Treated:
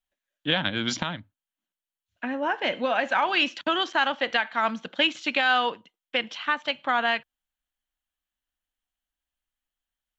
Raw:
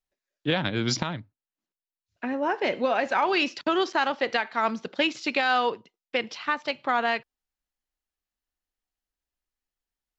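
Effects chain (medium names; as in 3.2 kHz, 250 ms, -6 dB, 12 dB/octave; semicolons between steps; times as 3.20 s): graphic EQ with 31 bands 125 Hz -11 dB, 400 Hz -11 dB, 1.6 kHz +4 dB, 3.15 kHz +8 dB, 5 kHz -8 dB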